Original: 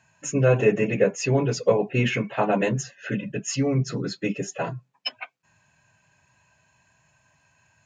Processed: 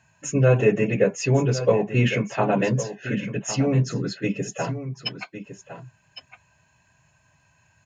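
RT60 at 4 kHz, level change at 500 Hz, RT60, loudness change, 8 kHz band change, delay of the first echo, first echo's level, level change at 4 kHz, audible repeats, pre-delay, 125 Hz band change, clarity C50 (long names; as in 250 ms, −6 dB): no reverb audible, +0.5 dB, no reverb audible, +1.5 dB, +0.5 dB, 1,108 ms, −12.0 dB, +0.5 dB, 1, no reverb audible, +3.5 dB, no reverb audible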